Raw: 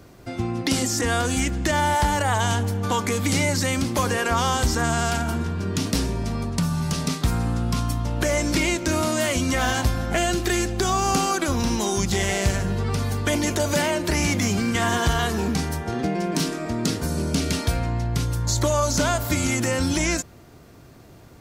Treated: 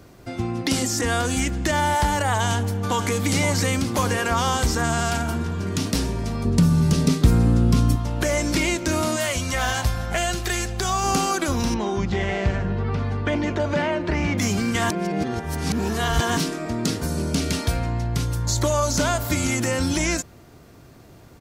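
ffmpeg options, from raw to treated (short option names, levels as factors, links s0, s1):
-filter_complex "[0:a]asplit=2[s0][s1];[s1]afade=t=in:st=2.47:d=0.01,afade=t=out:st=3.24:d=0.01,aecho=0:1:520|1040|1560|2080|2600|3120|3640|4160|4680|5200:0.334965|0.234476|0.164133|0.114893|0.0804252|0.0562976|0.0394083|0.0275858|0.0193101|0.0135171[s2];[s0][s2]amix=inputs=2:normalize=0,asettb=1/sr,asplit=3[s3][s4][s5];[s3]atrim=end=6.454[s6];[s4]atrim=start=6.45:end=7.96,asetpts=PTS-STARTPTS,afade=t=in:d=0.004:c=qsin,afade=t=out:st=1.506:d=0.004:c=qsin,lowshelf=f=580:t=q:w=1.5:g=6.5[s7];[s5]atrim=start=7.956[s8];[s6][s7]acrossfade=d=0.004:c1=hsin:c2=qsin[s9];[s9][s8]acrossfade=d=0.004:c1=qsin:c2=hsin,asettb=1/sr,asplit=3[s10][s11][s12];[s10]atrim=end=9.164[s13];[s11]atrim=start=9.16:end=11.04,asetpts=PTS-STARTPTS,afade=t=in:d=0.004:c=qsin,afade=t=out:st=1.876:d=0.004:c=qsin,equalizer=f=290:w=1.5:g=-10[s14];[s12]atrim=start=11.036[s15];[s13][s14]acrossfade=d=0.004:c1=hsin:c2=qsin[s16];[s16][s15]acrossfade=d=0.004:c1=qsin:c2=hsin,asettb=1/sr,asplit=3[s17][s18][s19];[s17]atrim=end=11.744[s20];[s18]atrim=start=11.74:end=14.38,asetpts=PTS-STARTPTS,afade=t=in:d=0.004:c=qsin,afade=t=out:st=2.636:d=0.004:c=qsin,lowpass=2500[s21];[s19]atrim=start=14.376[s22];[s20][s21]acrossfade=d=0.004:c1=hsin:c2=qsin[s23];[s23][s22]acrossfade=d=0.004:c1=qsin:c2=hsin,asplit=3[s24][s25][s26];[s24]atrim=end=14.902[s27];[s25]atrim=start=14.898:end=16.372,asetpts=PTS-STARTPTS,areverse[s28];[s26]atrim=start=16.368[s29];[s27][s28]acrossfade=d=0.004:c1=hsin:c2=hsin[s30];[s30][s29]acrossfade=d=0.004:c1=hsin:c2=hsin"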